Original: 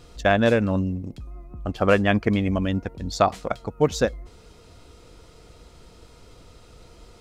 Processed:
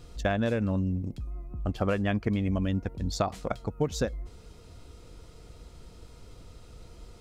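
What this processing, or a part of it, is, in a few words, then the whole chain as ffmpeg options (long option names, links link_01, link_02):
ASMR close-microphone chain: -af "lowshelf=frequency=240:gain=7,acompressor=threshold=-18dB:ratio=6,highshelf=frequency=7300:gain=4,volume=-5dB"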